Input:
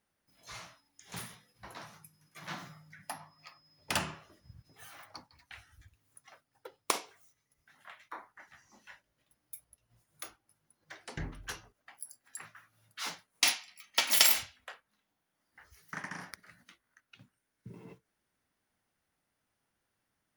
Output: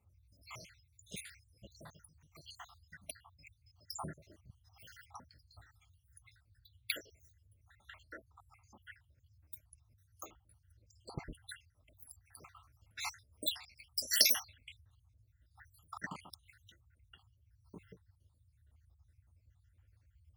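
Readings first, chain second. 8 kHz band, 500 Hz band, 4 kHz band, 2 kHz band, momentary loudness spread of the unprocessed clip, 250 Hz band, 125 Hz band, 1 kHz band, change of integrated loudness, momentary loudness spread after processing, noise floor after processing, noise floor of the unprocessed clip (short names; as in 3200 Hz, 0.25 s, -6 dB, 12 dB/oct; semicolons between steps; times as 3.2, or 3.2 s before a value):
-6.0 dB, -7.0 dB, -4.5 dB, -8.0 dB, 22 LU, -5.0 dB, -4.5 dB, -9.5 dB, -5.0 dB, 23 LU, -73 dBFS, -83 dBFS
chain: random spectral dropouts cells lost 77%; band noise 51–110 Hz -69 dBFS; gain +1.5 dB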